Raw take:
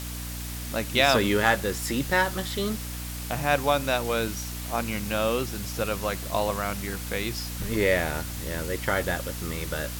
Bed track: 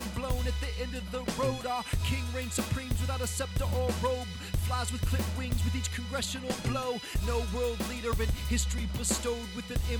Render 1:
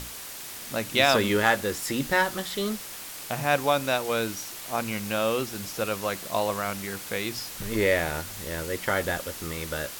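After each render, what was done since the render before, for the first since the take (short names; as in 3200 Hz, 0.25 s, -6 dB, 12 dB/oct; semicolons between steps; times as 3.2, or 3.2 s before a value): notches 60/120/180/240/300 Hz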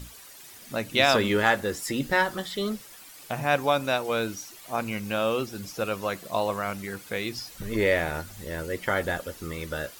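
denoiser 11 dB, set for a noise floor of -40 dBFS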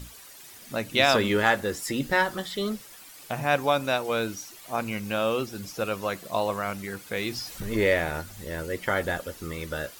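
7.17–7.94 G.711 law mismatch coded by mu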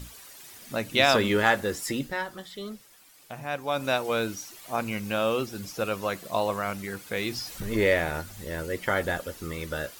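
1.91–3.88 dip -8.5 dB, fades 0.23 s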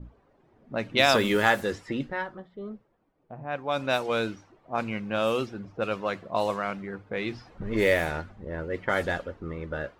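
notches 50/100 Hz; low-pass opened by the level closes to 470 Hz, open at -20 dBFS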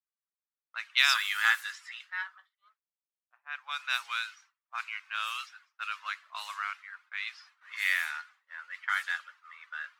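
steep high-pass 1200 Hz 36 dB/oct; expander -54 dBFS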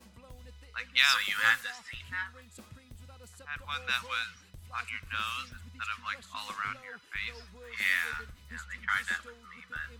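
add bed track -19.5 dB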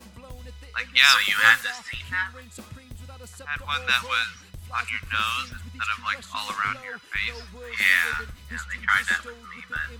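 gain +9 dB; limiter -1 dBFS, peak gain reduction 2.5 dB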